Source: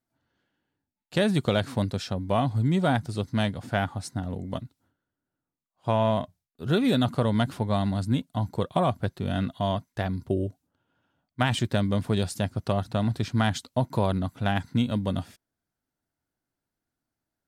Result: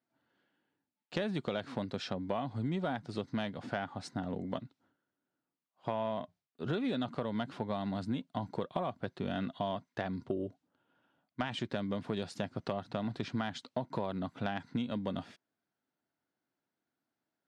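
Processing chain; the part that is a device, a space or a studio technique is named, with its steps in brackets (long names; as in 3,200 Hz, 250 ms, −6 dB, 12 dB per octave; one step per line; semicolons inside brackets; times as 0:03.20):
AM radio (band-pass filter 190–4,100 Hz; downward compressor 6 to 1, threshold −31 dBFS, peak gain reduction 11.5 dB; soft clipping −18 dBFS, distortion −26 dB)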